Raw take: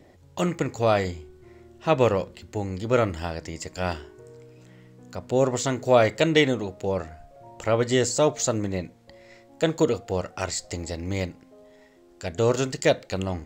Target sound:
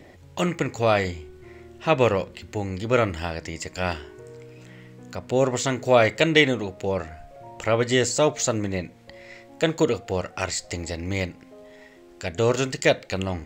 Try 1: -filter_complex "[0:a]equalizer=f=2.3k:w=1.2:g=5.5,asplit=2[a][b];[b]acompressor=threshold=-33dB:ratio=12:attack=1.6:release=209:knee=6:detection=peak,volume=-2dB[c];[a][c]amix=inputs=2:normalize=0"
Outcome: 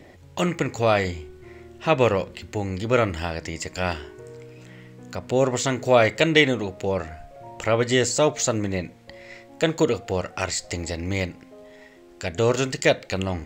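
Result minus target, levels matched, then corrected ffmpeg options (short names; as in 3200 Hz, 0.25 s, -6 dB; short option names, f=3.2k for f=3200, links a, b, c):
compressor: peak gain reduction -9.5 dB
-filter_complex "[0:a]equalizer=f=2.3k:w=1.2:g=5.5,asplit=2[a][b];[b]acompressor=threshold=-43.5dB:ratio=12:attack=1.6:release=209:knee=6:detection=peak,volume=-2dB[c];[a][c]amix=inputs=2:normalize=0"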